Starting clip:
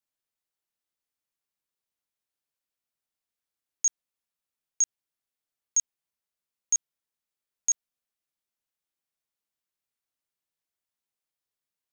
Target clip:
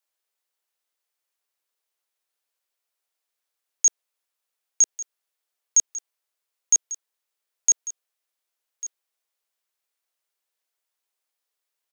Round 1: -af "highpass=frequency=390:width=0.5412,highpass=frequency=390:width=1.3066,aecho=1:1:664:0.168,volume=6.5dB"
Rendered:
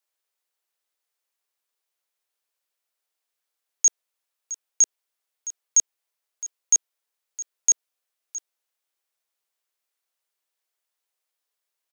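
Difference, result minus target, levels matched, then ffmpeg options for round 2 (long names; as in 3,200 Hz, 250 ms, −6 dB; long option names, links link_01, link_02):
echo 482 ms early
-af "highpass=frequency=390:width=0.5412,highpass=frequency=390:width=1.3066,aecho=1:1:1146:0.168,volume=6.5dB"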